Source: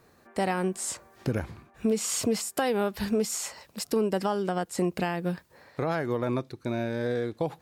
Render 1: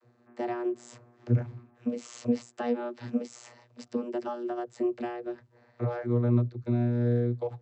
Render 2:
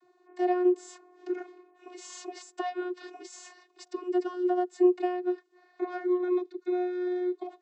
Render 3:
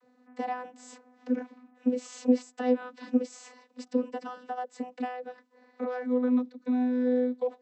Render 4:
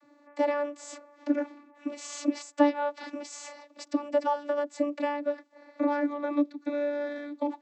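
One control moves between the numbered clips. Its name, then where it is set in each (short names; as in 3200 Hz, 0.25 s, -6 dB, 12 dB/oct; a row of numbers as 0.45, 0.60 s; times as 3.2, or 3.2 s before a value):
vocoder, frequency: 120, 360, 250, 290 Hz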